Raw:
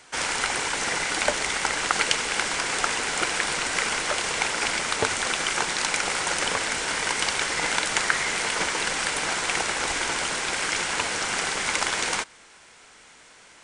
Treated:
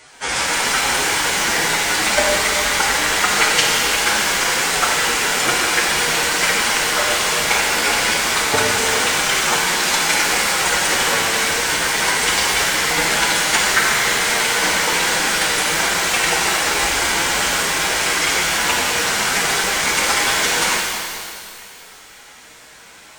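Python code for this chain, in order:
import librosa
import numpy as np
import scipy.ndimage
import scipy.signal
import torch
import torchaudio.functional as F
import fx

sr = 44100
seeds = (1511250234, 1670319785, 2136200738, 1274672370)

y = fx.stretch_vocoder(x, sr, factor=1.7)
y = fx.rev_shimmer(y, sr, seeds[0], rt60_s=2.1, semitones=12, shimmer_db=-8, drr_db=-1.5)
y = y * 10.0 ** (5.0 / 20.0)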